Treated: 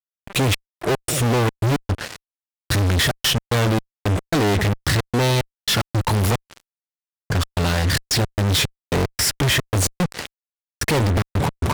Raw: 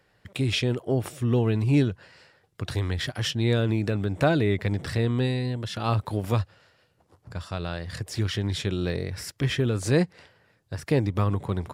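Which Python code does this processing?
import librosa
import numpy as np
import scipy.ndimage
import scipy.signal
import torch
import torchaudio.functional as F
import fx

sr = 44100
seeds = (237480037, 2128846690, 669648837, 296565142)

y = fx.step_gate(x, sr, bpm=111, pattern='x.xx..x.xxx.', floor_db=-60.0, edge_ms=4.5)
y = fx.fuzz(y, sr, gain_db=47.0, gate_db=-49.0)
y = F.gain(torch.from_numpy(y), -3.5).numpy()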